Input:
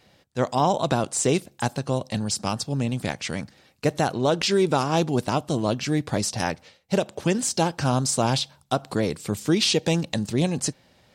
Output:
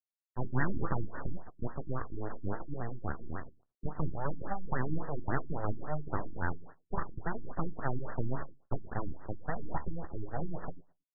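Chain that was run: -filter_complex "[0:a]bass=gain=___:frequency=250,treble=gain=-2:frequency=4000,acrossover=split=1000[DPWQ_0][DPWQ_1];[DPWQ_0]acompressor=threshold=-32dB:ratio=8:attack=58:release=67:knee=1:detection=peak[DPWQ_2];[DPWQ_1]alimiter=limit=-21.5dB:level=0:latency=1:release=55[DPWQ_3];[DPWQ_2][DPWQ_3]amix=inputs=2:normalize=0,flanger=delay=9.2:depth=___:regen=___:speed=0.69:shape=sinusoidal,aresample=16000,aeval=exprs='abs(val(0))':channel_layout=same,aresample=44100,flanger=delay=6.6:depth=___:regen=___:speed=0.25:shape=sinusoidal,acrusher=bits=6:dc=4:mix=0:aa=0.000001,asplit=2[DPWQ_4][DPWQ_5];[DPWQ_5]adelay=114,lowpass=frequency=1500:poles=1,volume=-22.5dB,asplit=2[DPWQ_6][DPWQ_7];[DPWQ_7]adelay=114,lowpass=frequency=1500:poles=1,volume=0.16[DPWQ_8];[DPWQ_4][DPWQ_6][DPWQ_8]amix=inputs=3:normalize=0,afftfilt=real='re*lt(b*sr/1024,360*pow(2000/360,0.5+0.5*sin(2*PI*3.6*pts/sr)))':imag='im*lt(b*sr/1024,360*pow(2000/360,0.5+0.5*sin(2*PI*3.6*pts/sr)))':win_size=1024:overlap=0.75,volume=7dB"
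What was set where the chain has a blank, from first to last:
-14, 9.5, 64, 6.7, 80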